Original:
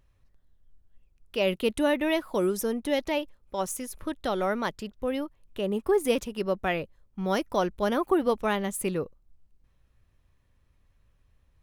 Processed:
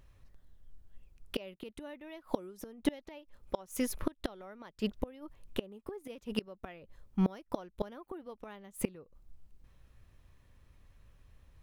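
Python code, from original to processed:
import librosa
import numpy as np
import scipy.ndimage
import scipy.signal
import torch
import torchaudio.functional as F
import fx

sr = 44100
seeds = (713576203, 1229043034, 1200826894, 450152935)

y = fx.dynamic_eq(x, sr, hz=9100.0, q=0.85, threshold_db=-52.0, ratio=4.0, max_db=-6)
y = fx.gate_flip(y, sr, shuts_db=-22.0, range_db=-27)
y = y * librosa.db_to_amplitude(5.0)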